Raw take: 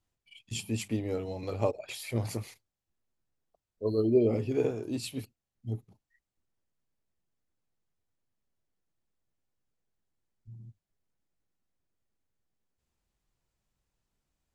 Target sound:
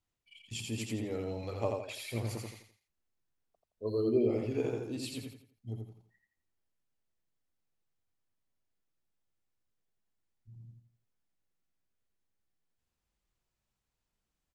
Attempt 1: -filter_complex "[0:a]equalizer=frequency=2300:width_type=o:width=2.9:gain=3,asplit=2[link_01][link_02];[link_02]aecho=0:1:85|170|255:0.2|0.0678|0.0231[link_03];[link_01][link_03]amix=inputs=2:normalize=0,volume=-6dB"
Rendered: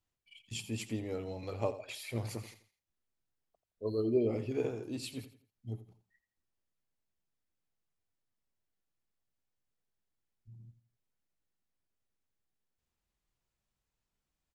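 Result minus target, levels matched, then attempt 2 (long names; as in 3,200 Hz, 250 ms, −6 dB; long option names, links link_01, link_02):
echo-to-direct −10.5 dB
-filter_complex "[0:a]equalizer=frequency=2300:width_type=o:width=2.9:gain=3,asplit=2[link_01][link_02];[link_02]aecho=0:1:85|170|255|340:0.668|0.227|0.0773|0.0263[link_03];[link_01][link_03]amix=inputs=2:normalize=0,volume=-6dB"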